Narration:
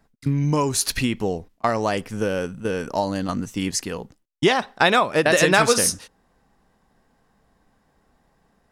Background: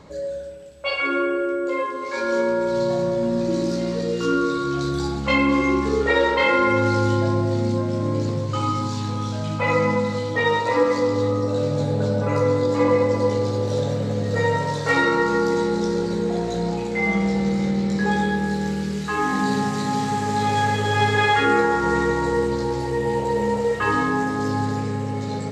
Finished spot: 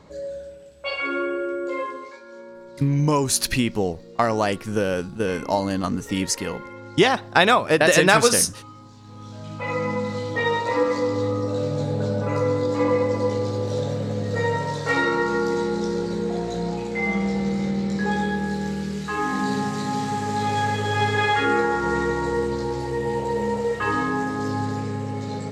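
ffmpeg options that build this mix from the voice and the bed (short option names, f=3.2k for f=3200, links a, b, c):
-filter_complex "[0:a]adelay=2550,volume=1dB[a];[1:a]volume=14.5dB,afade=t=out:st=1.9:d=0.29:silence=0.141254,afade=t=in:st=9.01:d=1.25:silence=0.125893[b];[a][b]amix=inputs=2:normalize=0"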